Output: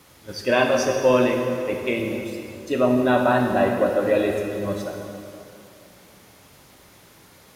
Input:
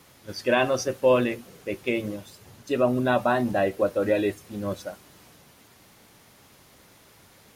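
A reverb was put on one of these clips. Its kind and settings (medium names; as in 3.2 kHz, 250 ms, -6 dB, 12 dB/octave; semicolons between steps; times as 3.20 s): plate-style reverb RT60 2.7 s, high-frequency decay 0.75×, DRR 1.5 dB; trim +1.5 dB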